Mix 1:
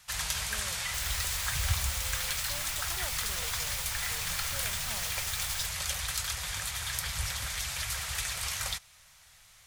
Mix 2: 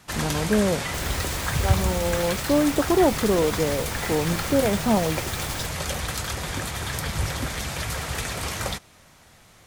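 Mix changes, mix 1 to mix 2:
speech +10.5 dB; master: remove passive tone stack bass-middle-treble 10-0-10

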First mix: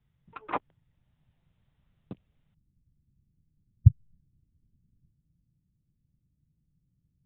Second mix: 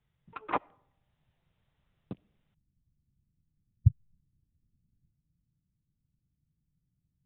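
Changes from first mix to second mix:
speech -5.5 dB; reverb: on, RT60 0.75 s

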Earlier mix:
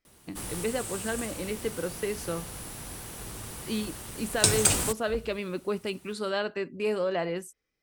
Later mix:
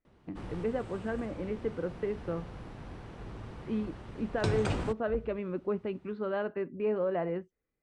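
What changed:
speech: add LPF 2400 Hz 12 dB/oct; master: add tape spacing loss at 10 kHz 37 dB

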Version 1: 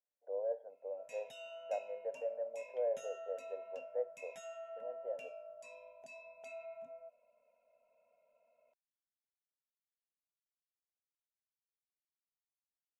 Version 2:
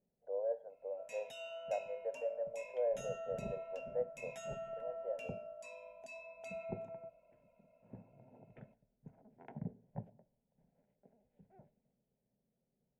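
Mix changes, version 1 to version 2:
second sound: unmuted; reverb: on, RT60 0.90 s

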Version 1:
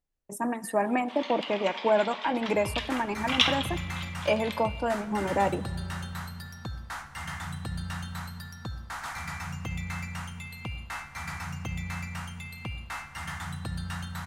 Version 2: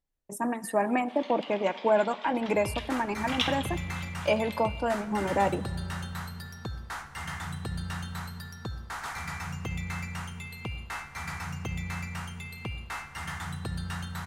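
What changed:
first sound -6.5 dB; second sound: add bell 410 Hz +12.5 dB 0.27 oct

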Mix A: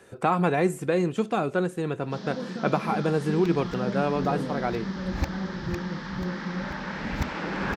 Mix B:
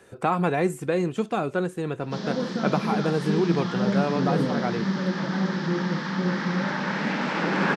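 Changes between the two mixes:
first sound +7.0 dB; second sound: muted; reverb: off

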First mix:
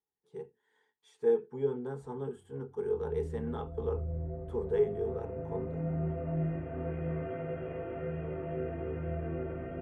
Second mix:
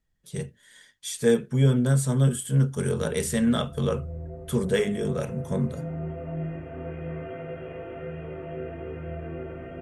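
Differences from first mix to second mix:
speech: remove double band-pass 600 Hz, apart 0.95 oct; background: remove air absorption 460 m

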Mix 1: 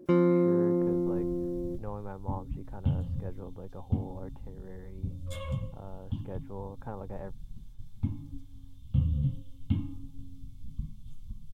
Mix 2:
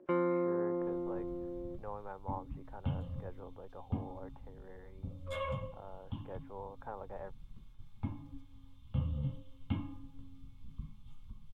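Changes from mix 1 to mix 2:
first sound: add air absorption 94 m; second sound +7.0 dB; master: add three-band isolator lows -15 dB, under 460 Hz, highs -18 dB, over 2600 Hz

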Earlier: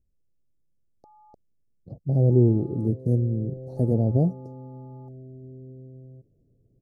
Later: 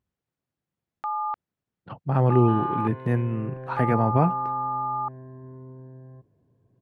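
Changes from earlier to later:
speech: add HPF 110 Hz; master: remove inverse Chebyshev band-stop 950–3300 Hz, stop band 40 dB

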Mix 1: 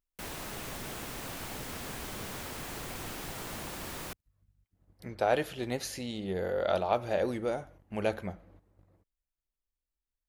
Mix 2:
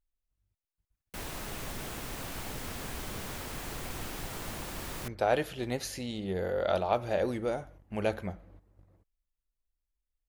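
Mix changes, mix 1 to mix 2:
background: entry +0.95 s; master: add low shelf 65 Hz +8 dB

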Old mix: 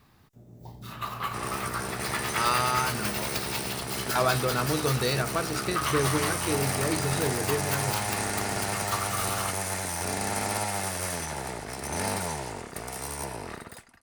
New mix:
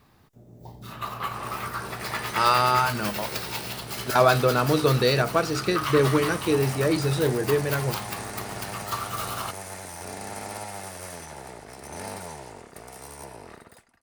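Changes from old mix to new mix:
speech +4.5 dB; second sound -8.0 dB; master: add bell 540 Hz +3.5 dB 1.7 oct

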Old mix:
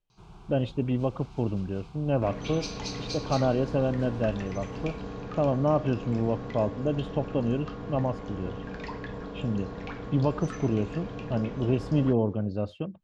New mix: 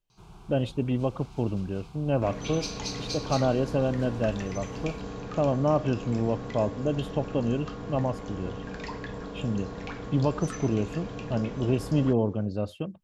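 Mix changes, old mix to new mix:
first sound: add air absorption 55 m; master: remove air absorption 110 m

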